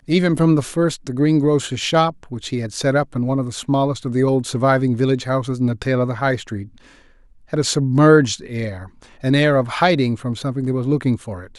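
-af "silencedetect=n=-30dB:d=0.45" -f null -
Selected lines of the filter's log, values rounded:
silence_start: 6.64
silence_end: 7.53 | silence_duration: 0.89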